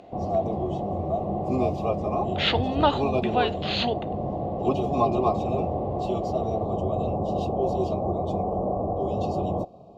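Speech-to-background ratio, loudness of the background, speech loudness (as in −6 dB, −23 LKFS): 0.5 dB, −27.0 LKFS, −26.5 LKFS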